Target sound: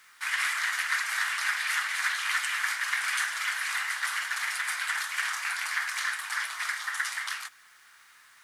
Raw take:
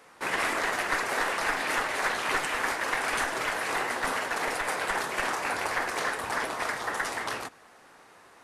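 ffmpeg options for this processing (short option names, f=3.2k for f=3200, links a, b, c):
-af "highpass=f=1.4k:w=0.5412,highpass=f=1.4k:w=1.3066,bandreject=f=2.6k:w=17,acrusher=bits=10:mix=0:aa=0.000001,volume=2.5dB"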